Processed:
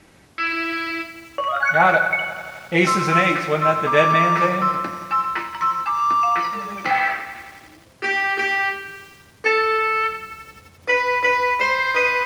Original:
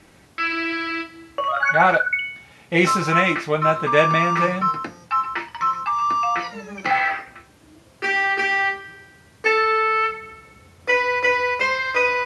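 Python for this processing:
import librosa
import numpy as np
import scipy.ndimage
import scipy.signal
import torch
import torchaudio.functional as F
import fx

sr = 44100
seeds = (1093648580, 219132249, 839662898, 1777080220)

y = fx.echo_crushed(x, sr, ms=86, feedback_pct=80, bits=7, wet_db=-12.5)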